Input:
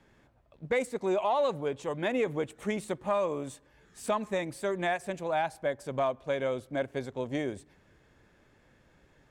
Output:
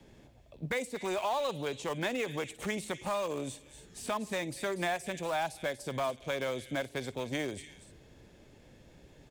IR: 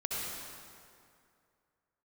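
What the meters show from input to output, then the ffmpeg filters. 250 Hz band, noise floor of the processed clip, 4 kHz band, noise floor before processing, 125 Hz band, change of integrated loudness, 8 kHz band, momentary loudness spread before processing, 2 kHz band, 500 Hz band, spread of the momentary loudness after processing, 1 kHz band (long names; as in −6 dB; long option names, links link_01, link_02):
−3.0 dB, −58 dBFS, +3.5 dB, −64 dBFS, −1.0 dB, −3.5 dB, +4.0 dB, 7 LU, 0.0 dB, −5.0 dB, 8 LU, −3.0 dB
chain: -filter_complex "[0:a]acrossover=split=830|4000[link_01][link_02][link_03];[link_01]acompressor=threshold=-41dB:ratio=4[link_04];[link_02]acompressor=threshold=-42dB:ratio=4[link_05];[link_03]acompressor=threshold=-53dB:ratio=4[link_06];[link_04][link_05][link_06]amix=inputs=3:normalize=0,acrossover=split=120|930|2100[link_07][link_08][link_09][link_10];[link_08]alimiter=level_in=11.5dB:limit=-24dB:level=0:latency=1,volume=-11.5dB[link_11];[link_09]aeval=exprs='val(0)*gte(abs(val(0)),0.00376)':channel_layout=same[link_12];[link_10]aecho=1:1:55|240|291:0.2|0.335|0.224[link_13];[link_07][link_11][link_12][link_13]amix=inputs=4:normalize=0,volume=7dB"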